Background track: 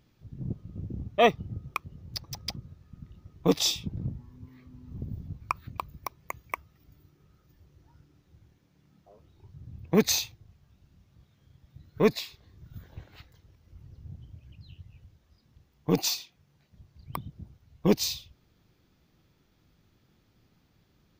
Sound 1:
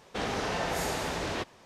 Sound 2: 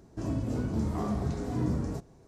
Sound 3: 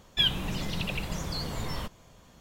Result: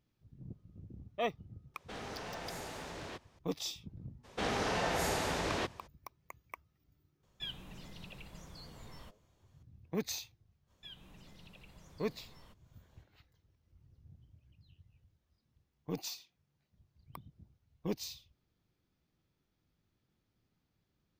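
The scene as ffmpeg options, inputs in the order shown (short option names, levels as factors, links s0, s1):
-filter_complex "[1:a]asplit=2[s0][s1];[3:a]asplit=2[s2][s3];[0:a]volume=0.2[s4];[s0]aeval=exprs='clip(val(0),-1,0.0282)':c=same[s5];[s3]acompressor=threshold=0.00355:ratio=1.5:attack=9.3:release=162:knee=1:detection=rms[s6];[s5]atrim=end=1.65,asetpts=PTS-STARTPTS,volume=0.266,afade=t=in:d=0.004:c=hsin,afade=t=out:st=1.646:d=0.004:c=hsin,adelay=1740[s7];[s1]atrim=end=1.65,asetpts=PTS-STARTPTS,volume=0.794,afade=t=in:d=0.02,afade=t=out:st=1.63:d=0.02,adelay=4230[s8];[s2]atrim=end=2.4,asetpts=PTS-STARTPTS,volume=0.126,afade=t=in:d=0.004:c=hsin,afade=t=out:st=2.396:d=0.004:c=hsin,adelay=7230[s9];[s6]atrim=end=2.4,asetpts=PTS-STARTPTS,volume=0.141,afade=t=in:d=0.05,afade=t=out:st=2.35:d=0.05,adelay=470106S[s10];[s4][s7][s8][s9][s10]amix=inputs=5:normalize=0"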